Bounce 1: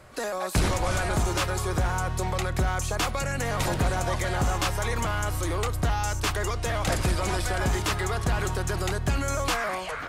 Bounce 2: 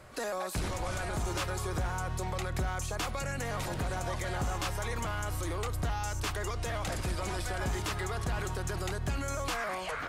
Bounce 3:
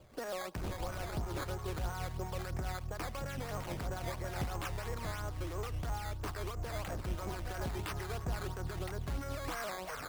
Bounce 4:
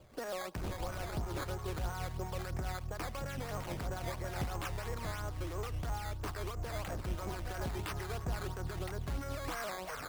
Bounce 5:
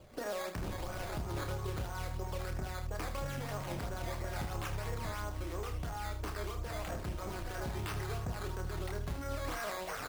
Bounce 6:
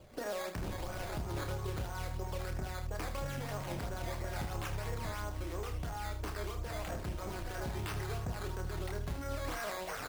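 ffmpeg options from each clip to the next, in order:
-af "alimiter=limit=-24dB:level=0:latency=1:release=121,volume=-2dB"
-filter_complex "[0:a]acrossover=split=1100[a][b];[a]aeval=exprs='val(0)*(1-0.5/2+0.5/2*cos(2*PI*5.9*n/s))':c=same[c];[b]aeval=exprs='val(0)*(1-0.5/2-0.5/2*cos(2*PI*5.9*n/s))':c=same[d];[c][d]amix=inputs=2:normalize=0,adynamicsmooth=sensitivity=7.5:basefreq=700,acrusher=samples=11:mix=1:aa=0.000001:lfo=1:lforange=11:lforate=3,volume=-2dB"
-af anull
-filter_complex "[0:a]acompressor=threshold=-38dB:ratio=6,asplit=2[a][b];[b]aecho=0:1:29|78:0.473|0.335[c];[a][c]amix=inputs=2:normalize=0,volume=2dB"
-af "equalizer=f=1.2k:t=o:w=0.26:g=-2"

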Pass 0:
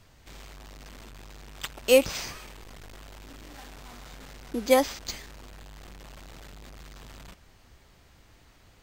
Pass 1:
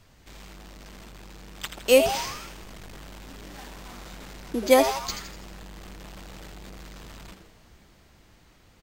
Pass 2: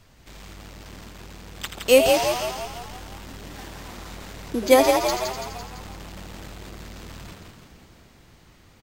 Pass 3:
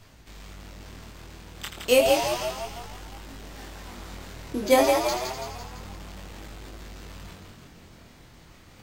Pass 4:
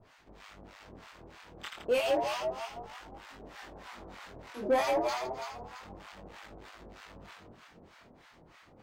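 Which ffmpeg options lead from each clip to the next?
-filter_complex "[0:a]asplit=2[a][b];[b]asplit=6[c][d][e][f][g][h];[c]adelay=82,afreqshift=140,volume=-9dB[i];[d]adelay=164,afreqshift=280,volume=-14.8dB[j];[e]adelay=246,afreqshift=420,volume=-20.7dB[k];[f]adelay=328,afreqshift=560,volume=-26.5dB[l];[g]adelay=410,afreqshift=700,volume=-32.4dB[m];[h]adelay=492,afreqshift=840,volume=-38.2dB[n];[i][j][k][l][m][n]amix=inputs=6:normalize=0[o];[a][o]amix=inputs=2:normalize=0,dynaudnorm=f=240:g=17:m=3dB"
-filter_complex "[0:a]asplit=8[a][b][c][d][e][f][g][h];[b]adelay=168,afreqshift=39,volume=-5.5dB[i];[c]adelay=336,afreqshift=78,volume=-10.7dB[j];[d]adelay=504,afreqshift=117,volume=-15.9dB[k];[e]adelay=672,afreqshift=156,volume=-21.1dB[l];[f]adelay=840,afreqshift=195,volume=-26.3dB[m];[g]adelay=1008,afreqshift=234,volume=-31.5dB[n];[h]adelay=1176,afreqshift=273,volume=-36.7dB[o];[a][i][j][k][l][m][n][o]amix=inputs=8:normalize=0,volume=2dB"
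-af "areverse,acompressor=mode=upward:threshold=-40dB:ratio=2.5,areverse,flanger=delay=18.5:depth=6.3:speed=0.3"
-filter_complex "[0:a]acrossover=split=800[a][b];[a]aeval=exprs='val(0)*(1-1/2+1/2*cos(2*PI*3.2*n/s))':c=same[c];[b]aeval=exprs='val(0)*(1-1/2-1/2*cos(2*PI*3.2*n/s))':c=same[d];[c][d]amix=inputs=2:normalize=0,asplit=2[e][f];[f]highpass=f=720:p=1,volume=18dB,asoftclip=type=tanh:threshold=-10.5dB[g];[e][g]amix=inputs=2:normalize=0,lowpass=f=1.3k:p=1,volume=-6dB,volume=-6.5dB"

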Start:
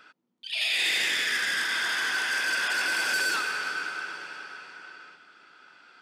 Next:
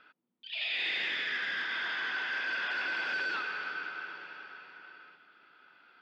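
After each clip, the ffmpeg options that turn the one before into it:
-af "lowpass=f=3.8k:w=0.5412,lowpass=f=3.8k:w=1.3066,volume=-6dB"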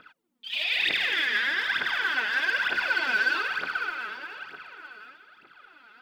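-af "aphaser=in_gain=1:out_gain=1:delay=4.9:decay=0.73:speed=1.1:type=triangular,volume=4dB"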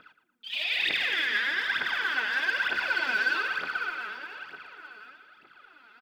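-filter_complex "[0:a]asplit=2[a][b];[b]adelay=115,lowpass=f=3.3k:p=1,volume=-11dB,asplit=2[c][d];[d]adelay=115,lowpass=f=3.3k:p=1,volume=0.38,asplit=2[e][f];[f]adelay=115,lowpass=f=3.3k:p=1,volume=0.38,asplit=2[g][h];[h]adelay=115,lowpass=f=3.3k:p=1,volume=0.38[i];[a][c][e][g][i]amix=inputs=5:normalize=0,volume=-2dB"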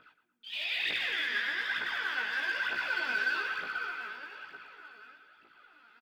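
-filter_complex "[0:a]asplit=2[a][b];[b]adelay=17,volume=-3dB[c];[a][c]amix=inputs=2:normalize=0,volume=-6.5dB"

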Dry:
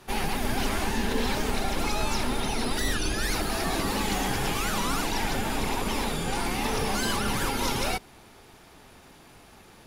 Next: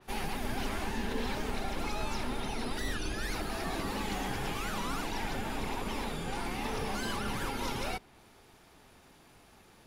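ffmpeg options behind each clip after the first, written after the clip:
-af "adynamicequalizer=threshold=0.00447:dfrequency=4100:dqfactor=0.7:tfrequency=4100:tqfactor=0.7:attack=5:release=100:ratio=0.375:range=2.5:mode=cutabove:tftype=highshelf,volume=-7dB"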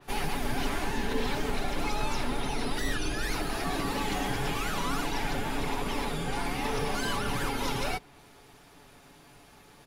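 -af "aecho=1:1:7:0.42,volume=3.5dB"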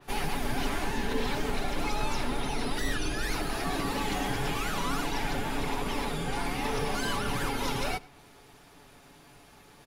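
-filter_complex "[0:a]asplit=2[a][b];[b]adelay=99.13,volume=-22dB,highshelf=f=4k:g=-2.23[c];[a][c]amix=inputs=2:normalize=0"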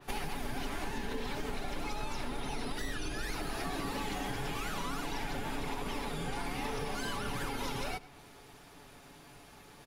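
-af "acompressor=threshold=-33dB:ratio=5"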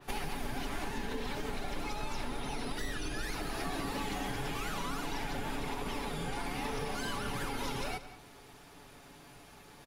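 -af "aecho=1:1:180:0.178"

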